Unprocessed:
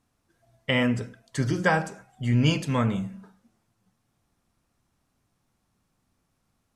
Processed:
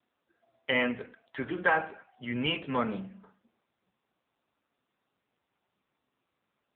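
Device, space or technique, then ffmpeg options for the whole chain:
telephone: -filter_complex "[0:a]asplit=3[link_01][link_02][link_03];[link_01]afade=type=out:start_time=0.78:duration=0.02[link_04];[link_02]tiltshelf=frequency=820:gain=-3,afade=type=in:start_time=0.78:duration=0.02,afade=type=out:start_time=2.6:duration=0.02[link_05];[link_03]afade=type=in:start_time=2.6:duration=0.02[link_06];[link_04][link_05][link_06]amix=inputs=3:normalize=0,highpass=300,lowpass=3400,asoftclip=type=tanh:threshold=-11.5dB" -ar 8000 -c:a libopencore_amrnb -b:a 6700

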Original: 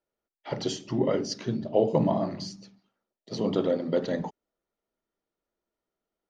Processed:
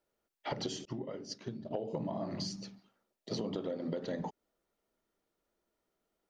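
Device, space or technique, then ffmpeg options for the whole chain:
serial compression, peaks first: -filter_complex "[0:a]acompressor=threshold=-31dB:ratio=8,acompressor=threshold=-40dB:ratio=2.5,asettb=1/sr,asplit=3[link_01][link_02][link_03];[link_01]atrim=end=0.854[link_04];[link_02]atrim=start=0.85:end=1.71,asetpts=PTS-STARTPTS,afade=type=in:duration=0.004:curve=qsin,afade=type=out:start_time=0.856:duration=0.004:curve=qsin,agate=range=-33dB:threshold=-35dB:ratio=3:detection=peak[link_05];[link_03]atrim=start=1.706[link_06];[link_04][link_05]acrossfade=duration=0.004:curve1=hsin:curve2=qsin[link_07];[link_07][link_06]acrossfade=duration=0.004:curve1=qsin:curve2=hsin,volume=4dB"

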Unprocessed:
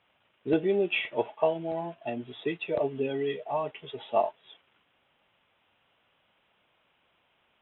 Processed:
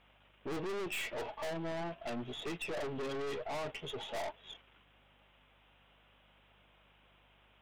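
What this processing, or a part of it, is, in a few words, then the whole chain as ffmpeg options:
valve amplifier with mains hum: -af "aeval=exprs='(tanh(112*val(0)+0.4)-tanh(0.4))/112':channel_layout=same,aeval=exprs='val(0)+0.0002*(sin(2*PI*50*n/s)+sin(2*PI*2*50*n/s)/2+sin(2*PI*3*50*n/s)/3+sin(2*PI*4*50*n/s)/4+sin(2*PI*5*50*n/s)/5)':channel_layout=same,volume=4dB"

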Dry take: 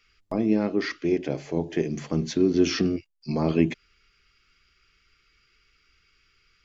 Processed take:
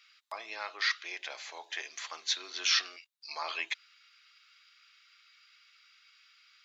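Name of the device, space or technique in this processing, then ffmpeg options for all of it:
headphones lying on a table: -af "highpass=frequency=1000:width=0.5412,highpass=frequency=1000:width=1.3066,equalizer=frequency=3800:width_type=o:width=0.28:gain=10,volume=2dB"

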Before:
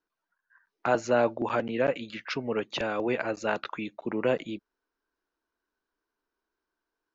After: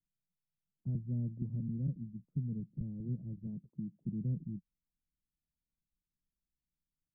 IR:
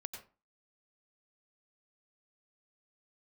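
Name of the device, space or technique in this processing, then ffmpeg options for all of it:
the neighbour's flat through the wall: -filter_complex "[0:a]lowpass=frequency=160:width=0.5412,lowpass=frequency=160:width=1.3066,equalizer=frequency=170:width_type=o:width=0.73:gain=7.5,asettb=1/sr,asplit=3[link_01][link_02][link_03];[link_01]atrim=end=3.474[link_04];[link_02]atrim=start=3.47:end=4.03,asetpts=PTS-STARTPTS,afade=type=in:duration=0.004:curve=qsin,afade=type=out:start_time=0.556:duration=0.004:curve=qsin,highpass=120[link_05];[link_03]atrim=start=4.026[link_06];[link_04][link_05]acrossfade=duration=0.004:curve1=hsin:curve2=qsin[link_07];[link_07][link_06]acrossfade=duration=0.004:curve1=qsin:curve2=hsin,volume=4.5dB"

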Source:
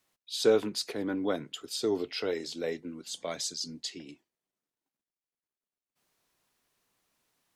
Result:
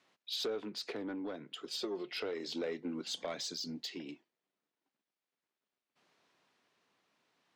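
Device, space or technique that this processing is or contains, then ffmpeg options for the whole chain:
AM radio: -filter_complex "[0:a]highpass=170,lowpass=4100,acompressor=threshold=-40dB:ratio=5,asoftclip=type=tanh:threshold=-36dB,tremolo=f=0.35:d=0.39,asettb=1/sr,asplit=3[link_01][link_02][link_03];[link_01]atrim=end=1.664[link_04];[link_02]atrim=start=1.66:end=2.14,asetpts=PTS-STARTPTS,afade=type=in:duration=0.004:curve=qsin,afade=type=out:start_time=0.476:duration=0.004:curve=qsin,aecho=1:1:5.6:0.71,atrim=end_sample=21168[link_05];[link_03]atrim=start=2.136[link_06];[link_04][link_05]acrossfade=duration=0.004:curve1=hsin:curve2=qsin[link_07];[link_07][link_06]acrossfade=duration=0.004:curve1=qsin:curve2=hsin,volume=7dB"

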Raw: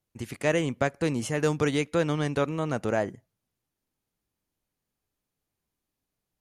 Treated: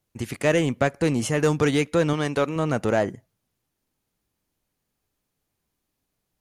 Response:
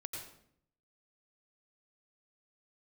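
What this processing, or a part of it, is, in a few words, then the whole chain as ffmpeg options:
parallel distortion: -filter_complex "[0:a]asettb=1/sr,asplit=3[link_01][link_02][link_03];[link_01]atrim=end=2.134[link_04];[link_02]atrim=start=2.13:end=2.56,asetpts=PTS-STARTPTS,afade=type=in:duration=0.004:curve=qsin,afade=type=out:start_time=0.426:duration=0.004:curve=qsin,lowshelf=frequency=190:gain=-9[link_05];[link_03]atrim=start=2.556[link_06];[link_04][link_05]acrossfade=duration=0.004:curve1=hsin:curve2=qsin[link_07];[link_07][link_06]acrossfade=duration=0.004:curve1=qsin:curve2=hsin,asplit=2[link_08][link_09];[link_09]asoftclip=type=hard:threshold=-24.5dB,volume=-4dB[link_10];[link_08][link_10]amix=inputs=2:normalize=0,volume=1.5dB"

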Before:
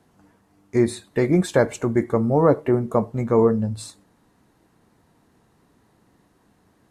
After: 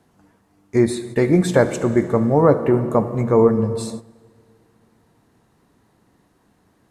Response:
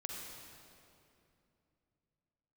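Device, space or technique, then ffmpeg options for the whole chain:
keyed gated reverb: -filter_complex "[0:a]asplit=3[link_01][link_02][link_03];[1:a]atrim=start_sample=2205[link_04];[link_02][link_04]afir=irnorm=-1:irlink=0[link_05];[link_03]apad=whole_len=304540[link_06];[link_05][link_06]sidechaingate=range=-15dB:threshold=-48dB:ratio=16:detection=peak,volume=-5dB[link_07];[link_01][link_07]amix=inputs=2:normalize=0"

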